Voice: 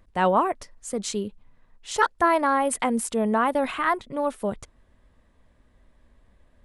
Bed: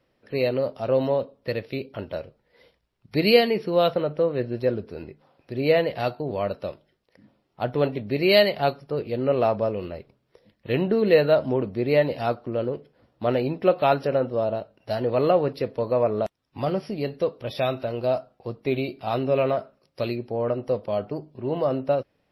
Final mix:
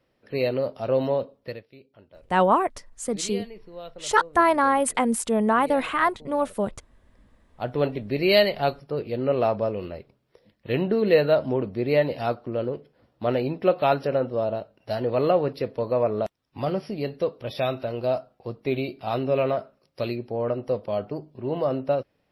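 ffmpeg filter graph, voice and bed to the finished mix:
-filter_complex "[0:a]adelay=2150,volume=1.5dB[a];[1:a]volume=17.5dB,afade=t=out:st=1.32:d=0.33:silence=0.11885,afade=t=in:st=7.04:d=0.79:silence=0.11885[b];[a][b]amix=inputs=2:normalize=0"

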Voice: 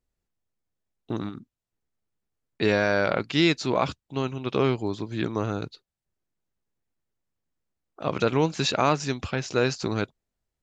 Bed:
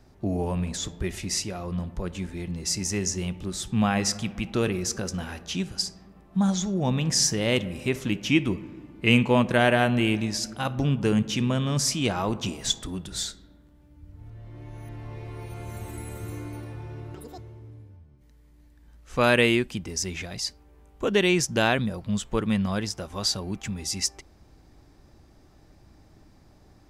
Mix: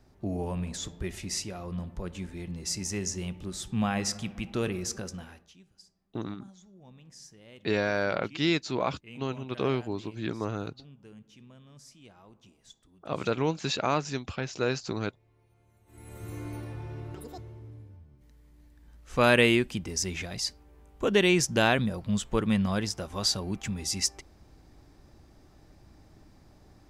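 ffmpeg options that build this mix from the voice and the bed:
-filter_complex "[0:a]adelay=5050,volume=-5dB[a];[1:a]volume=22dB,afade=t=out:st=4.91:d=0.63:silence=0.0707946,afade=t=in:st=15.86:d=0.64:silence=0.0446684[b];[a][b]amix=inputs=2:normalize=0"

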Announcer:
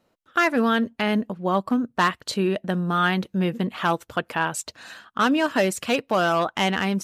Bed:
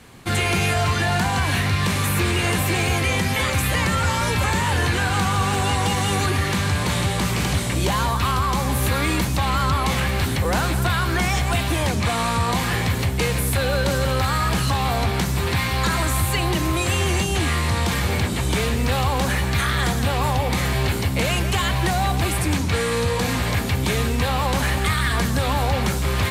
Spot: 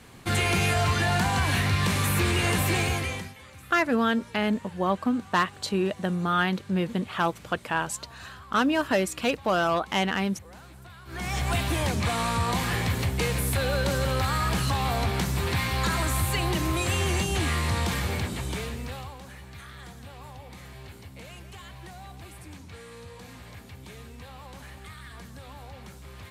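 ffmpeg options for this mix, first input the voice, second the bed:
-filter_complex "[0:a]adelay=3350,volume=-3dB[a];[1:a]volume=18dB,afade=t=out:st=2.76:d=0.58:silence=0.0707946,afade=t=in:st=11.05:d=0.44:silence=0.0841395,afade=t=out:st=17.77:d=1.42:silence=0.125893[b];[a][b]amix=inputs=2:normalize=0"

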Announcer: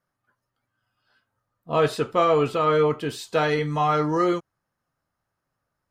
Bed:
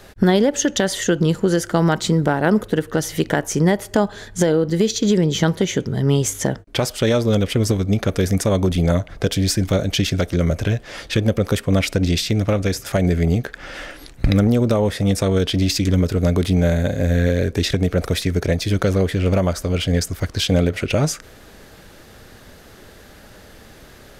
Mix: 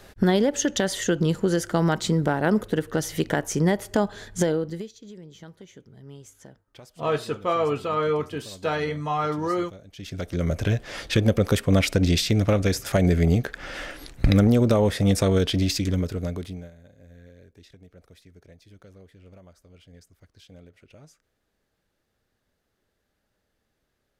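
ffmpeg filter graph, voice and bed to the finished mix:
-filter_complex "[0:a]adelay=5300,volume=-4dB[a];[1:a]volume=20dB,afade=t=out:st=4.42:d=0.48:silence=0.0794328,afade=t=in:st=9.95:d=0.87:silence=0.0562341,afade=t=out:st=15.24:d=1.47:silence=0.0316228[b];[a][b]amix=inputs=2:normalize=0"

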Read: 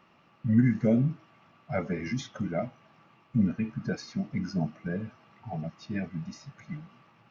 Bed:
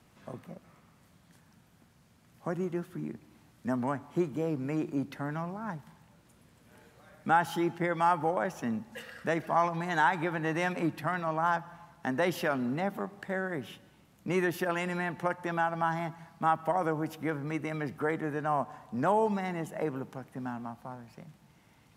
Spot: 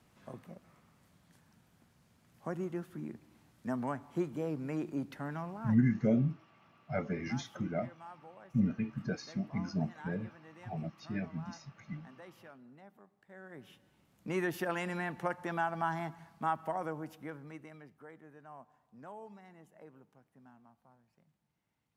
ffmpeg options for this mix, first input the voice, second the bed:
-filter_complex "[0:a]adelay=5200,volume=-4.5dB[a];[1:a]volume=16dB,afade=t=out:st=5.65:d=0.21:silence=0.1,afade=t=in:st=13.26:d=1.28:silence=0.0944061,afade=t=out:st=16.07:d=1.85:silence=0.125893[b];[a][b]amix=inputs=2:normalize=0"

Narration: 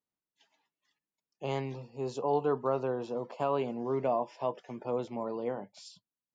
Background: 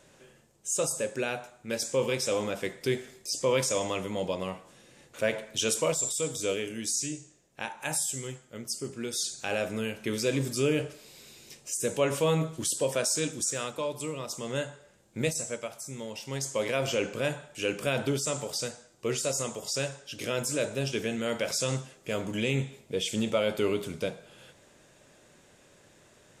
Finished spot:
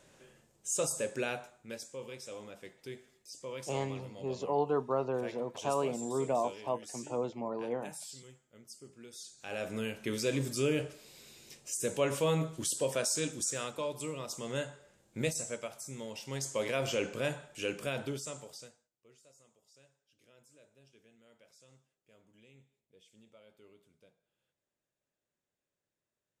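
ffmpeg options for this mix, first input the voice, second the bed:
-filter_complex "[0:a]adelay=2250,volume=-1.5dB[a];[1:a]volume=9dB,afade=t=out:st=1.31:d=0.57:silence=0.223872,afade=t=in:st=9.35:d=0.44:silence=0.237137,afade=t=out:st=17.44:d=1.45:silence=0.0354813[b];[a][b]amix=inputs=2:normalize=0"

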